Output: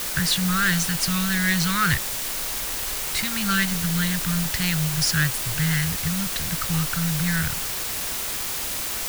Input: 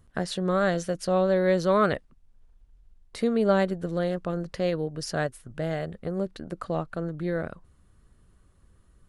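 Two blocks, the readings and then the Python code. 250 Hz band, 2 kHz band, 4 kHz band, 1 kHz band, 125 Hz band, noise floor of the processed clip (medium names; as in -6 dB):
+3.0 dB, +11.5 dB, +16.0 dB, +1.5 dB, +8.0 dB, -29 dBFS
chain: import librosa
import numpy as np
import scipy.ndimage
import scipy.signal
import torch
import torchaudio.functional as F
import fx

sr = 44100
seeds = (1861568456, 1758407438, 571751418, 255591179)

y = scipy.signal.sosfilt(scipy.signal.cheby2(4, 60, [320.0, 730.0], 'bandstop', fs=sr, output='sos'), x)
y = fx.leveller(y, sr, passes=2)
y = fx.quant_dither(y, sr, seeds[0], bits=6, dither='triangular')
y = F.gain(torch.from_numpy(y), 7.5).numpy()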